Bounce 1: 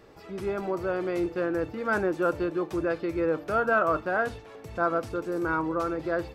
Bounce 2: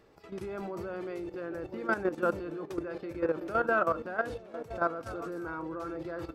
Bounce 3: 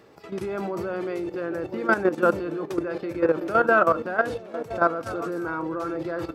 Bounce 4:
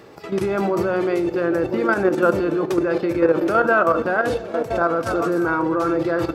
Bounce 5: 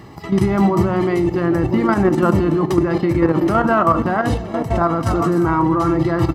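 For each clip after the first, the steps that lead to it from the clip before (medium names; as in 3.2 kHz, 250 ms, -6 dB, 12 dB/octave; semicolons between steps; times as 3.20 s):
repeats whose band climbs or falls 333 ms, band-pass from 240 Hz, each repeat 0.7 oct, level -6 dB; level held to a coarse grid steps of 12 dB; trim -1.5 dB
high-pass 99 Hz 12 dB/octave; trim +8.5 dB
peak limiter -16 dBFS, peak gain reduction 9.5 dB; on a send at -15 dB: reverberation RT60 1.1 s, pre-delay 3 ms; on the sum: trim +8.5 dB
bass shelf 250 Hz +10.5 dB; comb 1 ms, depth 66%; trim +1.5 dB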